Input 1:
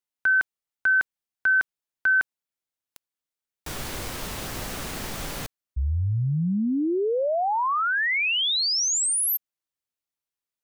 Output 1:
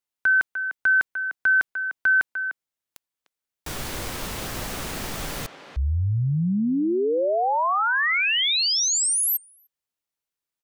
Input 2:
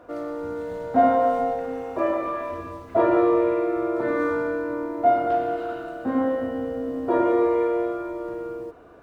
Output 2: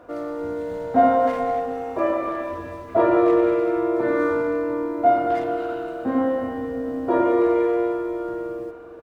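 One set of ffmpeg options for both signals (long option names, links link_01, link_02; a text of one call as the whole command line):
ffmpeg -i in.wav -filter_complex "[0:a]asplit=2[link_01][link_02];[link_02]adelay=300,highpass=300,lowpass=3400,asoftclip=type=hard:threshold=-15.5dB,volume=-9dB[link_03];[link_01][link_03]amix=inputs=2:normalize=0,volume=1.5dB" out.wav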